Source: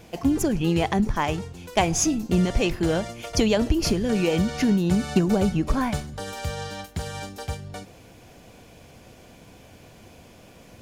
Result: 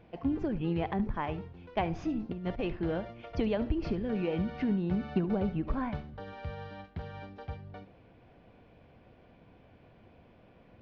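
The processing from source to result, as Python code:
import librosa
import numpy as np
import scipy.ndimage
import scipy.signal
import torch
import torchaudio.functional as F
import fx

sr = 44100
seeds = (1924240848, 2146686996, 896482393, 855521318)

y = scipy.ndimage.gaussian_filter1d(x, 2.9, mode='constant')
y = y + 10.0 ** (-16.5 / 20.0) * np.pad(y, (int(72 * sr / 1000.0), 0))[:len(y)]
y = fx.over_compress(y, sr, threshold_db=-23.0, ratio=-0.5, at=(2.14, 2.62), fade=0.02)
y = F.gain(torch.from_numpy(y), -9.0).numpy()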